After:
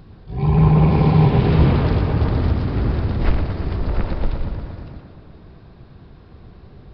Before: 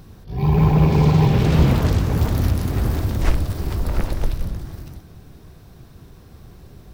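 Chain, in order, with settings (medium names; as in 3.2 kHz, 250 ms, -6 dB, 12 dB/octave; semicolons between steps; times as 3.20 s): treble shelf 3.7 kHz -6 dB; on a send: tape echo 118 ms, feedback 75%, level -5 dB, low-pass 3.6 kHz; on the sum: resampled via 11.025 kHz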